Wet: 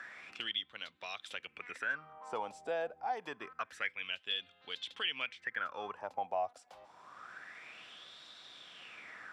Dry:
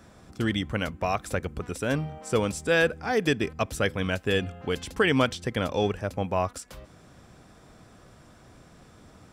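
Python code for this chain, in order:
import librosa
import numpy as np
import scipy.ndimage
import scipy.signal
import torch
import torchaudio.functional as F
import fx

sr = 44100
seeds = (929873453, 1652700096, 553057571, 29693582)

y = fx.filter_lfo_bandpass(x, sr, shape='sine', hz=0.27, low_hz=720.0, high_hz=3800.0, q=7.2)
y = fx.band_squash(y, sr, depth_pct=70)
y = y * 10.0 ** (2.5 / 20.0)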